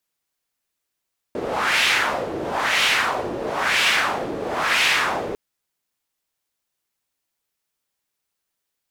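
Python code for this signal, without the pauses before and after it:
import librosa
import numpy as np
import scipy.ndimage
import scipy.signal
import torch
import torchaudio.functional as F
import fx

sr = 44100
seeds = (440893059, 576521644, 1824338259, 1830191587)

y = fx.wind(sr, seeds[0], length_s=4.0, low_hz=400.0, high_hz=2600.0, q=1.8, gusts=4, swing_db=10.0)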